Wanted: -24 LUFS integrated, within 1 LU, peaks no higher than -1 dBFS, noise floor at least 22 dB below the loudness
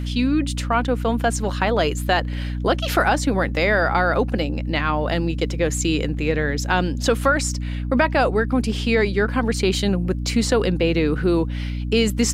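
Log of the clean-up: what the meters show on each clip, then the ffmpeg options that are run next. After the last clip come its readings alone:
hum 60 Hz; highest harmonic 300 Hz; hum level -23 dBFS; loudness -21.0 LUFS; peak level -4.0 dBFS; loudness target -24.0 LUFS
-> -af "bandreject=f=60:t=h:w=6,bandreject=f=120:t=h:w=6,bandreject=f=180:t=h:w=6,bandreject=f=240:t=h:w=6,bandreject=f=300:t=h:w=6"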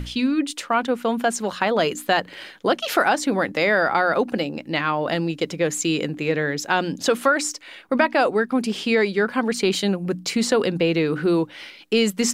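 hum not found; loudness -22.0 LUFS; peak level -5.0 dBFS; loudness target -24.0 LUFS
-> -af "volume=0.794"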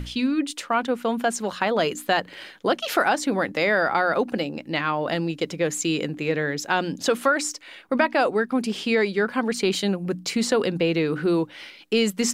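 loudness -24.0 LUFS; peak level -7.0 dBFS; noise floor -47 dBFS

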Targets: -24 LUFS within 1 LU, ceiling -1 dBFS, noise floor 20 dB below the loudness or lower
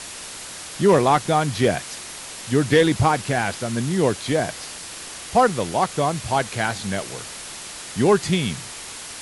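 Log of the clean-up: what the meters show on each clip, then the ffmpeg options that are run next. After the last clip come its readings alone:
noise floor -36 dBFS; noise floor target -41 dBFS; loudness -21.0 LUFS; peak level -6.0 dBFS; loudness target -24.0 LUFS
-> -af "afftdn=nr=6:nf=-36"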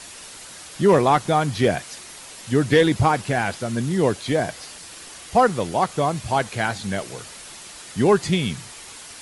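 noise floor -41 dBFS; loudness -21.0 LUFS; peak level -6.0 dBFS; loudness target -24.0 LUFS
-> -af "volume=0.708"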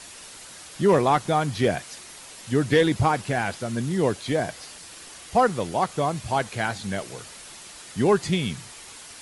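loudness -24.0 LUFS; peak level -9.0 dBFS; noise floor -44 dBFS

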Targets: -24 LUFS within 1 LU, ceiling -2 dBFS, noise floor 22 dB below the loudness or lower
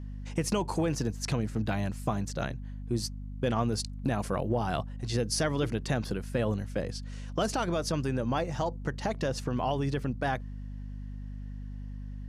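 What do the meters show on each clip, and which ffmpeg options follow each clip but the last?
hum 50 Hz; highest harmonic 250 Hz; hum level -37 dBFS; loudness -31.5 LUFS; peak level -15.0 dBFS; loudness target -24.0 LUFS
-> -af "bandreject=f=50:t=h:w=4,bandreject=f=100:t=h:w=4,bandreject=f=150:t=h:w=4,bandreject=f=200:t=h:w=4,bandreject=f=250:t=h:w=4"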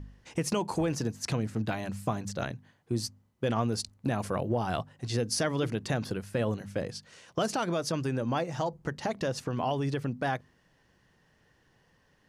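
hum not found; loudness -32.0 LUFS; peak level -15.0 dBFS; loudness target -24.0 LUFS
-> -af "volume=2.51"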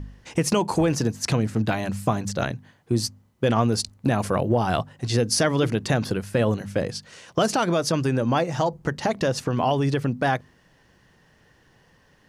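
loudness -24.0 LUFS; peak level -7.0 dBFS; noise floor -59 dBFS

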